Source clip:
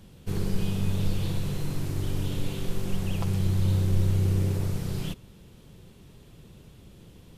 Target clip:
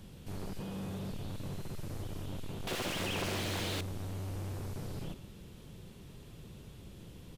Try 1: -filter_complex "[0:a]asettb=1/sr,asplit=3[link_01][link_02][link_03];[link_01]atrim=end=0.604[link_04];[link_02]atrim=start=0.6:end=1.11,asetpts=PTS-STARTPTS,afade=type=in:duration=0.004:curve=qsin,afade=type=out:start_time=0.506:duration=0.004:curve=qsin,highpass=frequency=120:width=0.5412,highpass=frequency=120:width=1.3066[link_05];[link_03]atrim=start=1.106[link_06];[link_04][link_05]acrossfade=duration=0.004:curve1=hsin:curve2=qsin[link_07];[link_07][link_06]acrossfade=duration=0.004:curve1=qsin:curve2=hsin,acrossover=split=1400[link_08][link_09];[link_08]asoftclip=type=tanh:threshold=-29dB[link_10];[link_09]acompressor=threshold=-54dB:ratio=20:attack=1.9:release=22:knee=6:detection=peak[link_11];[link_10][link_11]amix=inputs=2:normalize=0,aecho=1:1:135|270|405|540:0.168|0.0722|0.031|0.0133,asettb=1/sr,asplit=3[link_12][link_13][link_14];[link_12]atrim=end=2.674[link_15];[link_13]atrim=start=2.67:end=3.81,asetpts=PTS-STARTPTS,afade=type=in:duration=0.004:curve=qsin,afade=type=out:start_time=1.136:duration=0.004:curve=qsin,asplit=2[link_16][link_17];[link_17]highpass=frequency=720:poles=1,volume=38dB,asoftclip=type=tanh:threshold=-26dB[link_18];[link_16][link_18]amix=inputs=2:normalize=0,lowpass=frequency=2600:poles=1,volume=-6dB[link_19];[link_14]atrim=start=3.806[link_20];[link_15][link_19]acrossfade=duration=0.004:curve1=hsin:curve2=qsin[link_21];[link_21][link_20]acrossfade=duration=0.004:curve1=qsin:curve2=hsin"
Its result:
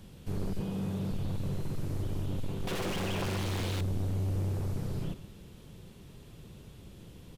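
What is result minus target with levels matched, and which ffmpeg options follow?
soft clipping: distortion −4 dB
-filter_complex "[0:a]asettb=1/sr,asplit=3[link_01][link_02][link_03];[link_01]atrim=end=0.604[link_04];[link_02]atrim=start=0.6:end=1.11,asetpts=PTS-STARTPTS,afade=type=in:duration=0.004:curve=qsin,afade=type=out:start_time=0.506:duration=0.004:curve=qsin,highpass=frequency=120:width=0.5412,highpass=frequency=120:width=1.3066[link_05];[link_03]atrim=start=1.106[link_06];[link_04][link_05]acrossfade=duration=0.004:curve1=hsin:curve2=qsin[link_07];[link_07][link_06]acrossfade=duration=0.004:curve1=qsin:curve2=hsin,acrossover=split=1400[link_08][link_09];[link_08]asoftclip=type=tanh:threshold=-38.5dB[link_10];[link_09]acompressor=threshold=-54dB:ratio=20:attack=1.9:release=22:knee=6:detection=peak[link_11];[link_10][link_11]amix=inputs=2:normalize=0,aecho=1:1:135|270|405|540:0.168|0.0722|0.031|0.0133,asettb=1/sr,asplit=3[link_12][link_13][link_14];[link_12]atrim=end=2.674[link_15];[link_13]atrim=start=2.67:end=3.81,asetpts=PTS-STARTPTS,afade=type=in:duration=0.004:curve=qsin,afade=type=out:start_time=1.136:duration=0.004:curve=qsin,asplit=2[link_16][link_17];[link_17]highpass=frequency=720:poles=1,volume=38dB,asoftclip=type=tanh:threshold=-26dB[link_18];[link_16][link_18]amix=inputs=2:normalize=0,lowpass=frequency=2600:poles=1,volume=-6dB[link_19];[link_14]atrim=start=3.806[link_20];[link_15][link_19]acrossfade=duration=0.004:curve1=hsin:curve2=qsin[link_21];[link_21][link_20]acrossfade=duration=0.004:curve1=qsin:curve2=hsin"

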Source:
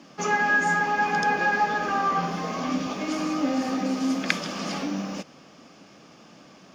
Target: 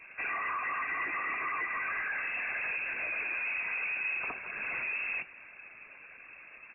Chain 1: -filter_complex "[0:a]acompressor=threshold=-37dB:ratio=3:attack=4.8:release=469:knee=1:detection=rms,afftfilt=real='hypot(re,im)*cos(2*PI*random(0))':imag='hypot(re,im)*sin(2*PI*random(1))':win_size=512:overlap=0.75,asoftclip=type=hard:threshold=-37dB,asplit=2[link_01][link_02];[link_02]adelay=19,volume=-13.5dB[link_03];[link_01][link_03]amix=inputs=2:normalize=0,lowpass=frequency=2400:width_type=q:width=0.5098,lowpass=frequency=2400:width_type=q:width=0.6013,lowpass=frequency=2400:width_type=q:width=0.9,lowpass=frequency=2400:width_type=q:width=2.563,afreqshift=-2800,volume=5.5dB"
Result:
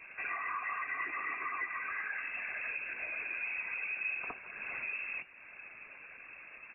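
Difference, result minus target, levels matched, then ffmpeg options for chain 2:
downward compressor: peak gain reduction +7 dB
-filter_complex "[0:a]acompressor=threshold=-26.5dB:ratio=3:attack=4.8:release=469:knee=1:detection=rms,afftfilt=real='hypot(re,im)*cos(2*PI*random(0))':imag='hypot(re,im)*sin(2*PI*random(1))':win_size=512:overlap=0.75,asoftclip=type=hard:threshold=-37dB,asplit=2[link_01][link_02];[link_02]adelay=19,volume=-13.5dB[link_03];[link_01][link_03]amix=inputs=2:normalize=0,lowpass=frequency=2400:width_type=q:width=0.5098,lowpass=frequency=2400:width_type=q:width=0.6013,lowpass=frequency=2400:width_type=q:width=0.9,lowpass=frequency=2400:width_type=q:width=2.563,afreqshift=-2800,volume=5.5dB"

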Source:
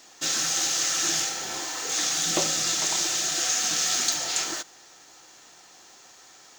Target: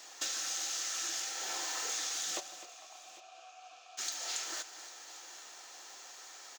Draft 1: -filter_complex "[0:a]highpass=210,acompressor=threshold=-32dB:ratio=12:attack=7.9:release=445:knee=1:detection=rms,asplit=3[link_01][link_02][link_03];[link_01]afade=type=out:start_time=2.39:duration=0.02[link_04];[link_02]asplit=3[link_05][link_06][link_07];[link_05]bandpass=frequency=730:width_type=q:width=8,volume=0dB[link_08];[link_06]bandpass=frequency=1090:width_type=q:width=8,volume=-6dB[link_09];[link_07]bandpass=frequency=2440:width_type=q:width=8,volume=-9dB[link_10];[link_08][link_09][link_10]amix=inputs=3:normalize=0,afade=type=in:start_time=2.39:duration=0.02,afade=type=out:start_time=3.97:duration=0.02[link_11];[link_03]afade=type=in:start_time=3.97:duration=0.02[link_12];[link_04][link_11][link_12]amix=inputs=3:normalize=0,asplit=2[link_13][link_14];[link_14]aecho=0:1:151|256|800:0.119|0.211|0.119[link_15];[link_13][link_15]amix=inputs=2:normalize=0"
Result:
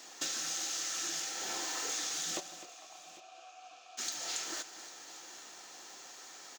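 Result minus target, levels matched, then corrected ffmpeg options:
250 Hz band +6.5 dB
-filter_complex "[0:a]highpass=470,acompressor=threshold=-32dB:ratio=12:attack=7.9:release=445:knee=1:detection=rms,asplit=3[link_01][link_02][link_03];[link_01]afade=type=out:start_time=2.39:duration=0.02[link_04];[link_02]asplit=3[link_05][link_06][link_07];[link_05]bandpass=frequency=730:width_type=q:width=8,volume=0dB[link_08];[link_06]bandpass=frequency=1090:width_type=q:width=8,volume=-6dB[link_09];[link_07]bandpass=frequency=2440:width_type=q:width=8,volume=-9dB[link_10];[link_08][link_09][link_10]amix=inputs=3:normalize=0,afade=type=in:start_time=2.39:duration=0.02,afade=type=out:start_time=3.97:duration=0.02[link_11];[link_03]afade=type=in:start_time=3.97:duration=0.02[link_12];[link_04][link_11][link_12]amix=inputs=3:normalize=0,asplit=2[link_13][link_14];[link_14]aecho=0:1:151|256|800:0.119|0.211|0.119[link_15];[link_13][link_15]amix=inputs=2:normalize=0"

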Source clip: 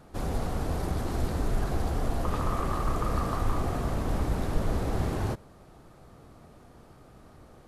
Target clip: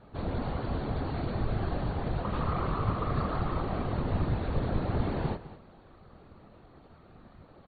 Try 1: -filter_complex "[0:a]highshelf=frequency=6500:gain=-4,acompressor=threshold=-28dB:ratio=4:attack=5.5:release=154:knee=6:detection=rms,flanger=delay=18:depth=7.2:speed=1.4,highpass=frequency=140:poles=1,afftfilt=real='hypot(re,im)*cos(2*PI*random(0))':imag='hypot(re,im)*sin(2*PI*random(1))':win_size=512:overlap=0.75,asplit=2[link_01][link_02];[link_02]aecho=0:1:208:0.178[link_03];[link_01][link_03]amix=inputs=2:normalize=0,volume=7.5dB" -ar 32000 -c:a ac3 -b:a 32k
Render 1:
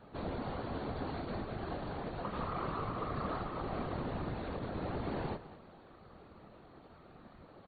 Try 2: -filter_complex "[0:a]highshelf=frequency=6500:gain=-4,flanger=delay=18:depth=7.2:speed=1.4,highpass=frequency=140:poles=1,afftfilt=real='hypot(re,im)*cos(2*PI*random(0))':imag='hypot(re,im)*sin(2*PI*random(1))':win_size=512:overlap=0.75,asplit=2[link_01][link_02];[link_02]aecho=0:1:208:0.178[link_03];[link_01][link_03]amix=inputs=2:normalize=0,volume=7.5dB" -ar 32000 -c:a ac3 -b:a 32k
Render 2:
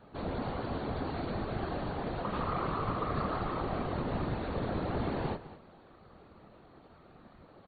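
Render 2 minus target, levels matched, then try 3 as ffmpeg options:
125 Hz band −3.5 dB
-filter_complex "[0:a]highshelf=frequency=6500:gain=-4,flanger=delay=18:depth=7.2:speed=1.4,afftfilt=real='hypot(re,im)*cos(2*PI*random(0))':imag='hypot(re,im)*sin(2*PI*random(1))':win_size=512:overlap=0.75,asplit=2[link_01][link_02];[link_02]aecho=0:1:208:0.178[link_03];[link_01][link_03]amix=inputs=2:normalize=0,volume=7.5dB" -ar 32000 -c:a ac3 -b:a 32k

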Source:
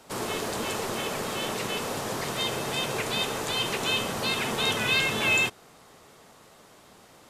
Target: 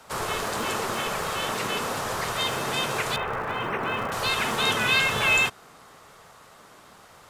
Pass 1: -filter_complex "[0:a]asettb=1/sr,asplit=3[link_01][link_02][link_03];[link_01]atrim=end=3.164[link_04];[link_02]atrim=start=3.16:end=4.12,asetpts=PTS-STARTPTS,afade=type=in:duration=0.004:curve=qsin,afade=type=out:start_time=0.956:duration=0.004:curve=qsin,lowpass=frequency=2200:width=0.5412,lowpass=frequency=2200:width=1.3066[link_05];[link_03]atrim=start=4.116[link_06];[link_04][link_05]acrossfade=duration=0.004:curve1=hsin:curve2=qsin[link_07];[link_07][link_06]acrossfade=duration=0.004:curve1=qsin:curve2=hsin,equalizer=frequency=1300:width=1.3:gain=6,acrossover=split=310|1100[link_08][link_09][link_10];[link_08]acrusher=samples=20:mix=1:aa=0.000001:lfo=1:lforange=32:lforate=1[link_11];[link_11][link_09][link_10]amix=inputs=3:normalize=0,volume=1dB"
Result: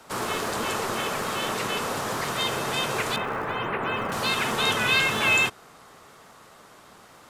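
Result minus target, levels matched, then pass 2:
sample-and-hold swept by an LFO: distortion −12 dB
-filter_complex "[0:a]asettb=1/sr,asplit=3[link_01][link_02][link_03];[link_01]atrim=end=3.164[link_04];[link_02]atrim=start=3.16:end=4.12,asetpts=PTS-STARTPTS,afade=type=in:duration=0.004:curve=qsin,afade=type=out:start_time=0.956:duration=0.004:curve=qsin,lowpass=frequency=2200:width=0.5412,lowpass=frequency=2200:width=1.3066[link_05];[link_03]atrim=start=4.116[link_06];[link_04][link_05]acrossfade=duration=0.004:curve1=hsin:curve2=qsin[link_07];[link_07][link_06]acrossfade=duration=0.004:curve1=qsin:curve2=hsin,equalizer=frequency=1300:width=1.3:gain=6,acrossover=split=310|1100[link_08][link_09][link_10];[link_08]acrusher=samples=73:mix=1:aa=0.000001:lfo=1:lforange=117:lforate=1[link_11];[link_11][link_09][link_10]amix=inputs=3:normalize=0,volume=1dB"

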